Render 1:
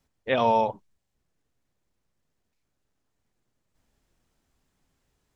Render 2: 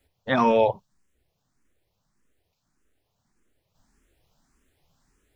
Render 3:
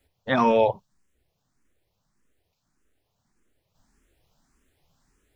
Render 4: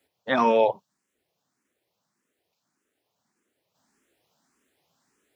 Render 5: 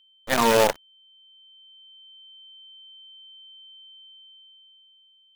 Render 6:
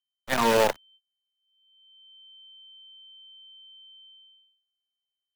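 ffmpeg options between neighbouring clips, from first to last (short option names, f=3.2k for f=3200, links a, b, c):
-filter_complex "[0:a]asplit=2[a][b];[b]afreqshift=1.7[c];[a][c]amix=inputs=2:normalize=1,volume=8dB"
-af anull
-af "highpass=230"
-af "acrusher=bits=4:dc=4:mix=0:aa=0.000001,aeval=exprs='val(0)+0.00141*sin(2*PI*3100*n/s)':c=same,dynaudnorm=f=270:g=9:m=12dB"
-filter_complex "[0:a]agate=range=-27dB:threshold=-51dB:ratio=16:detection=peak,acrossover=split=340|500|2700[a][b][c][d];[b]acrusher=bits=4:mix=0:aa=0.000001[e];[d]asoftclip=type=tanh:threshold=-20.5dB[f];[a][e][c][f]amix=inputs=4:normalize=0,volume=-2.5dB"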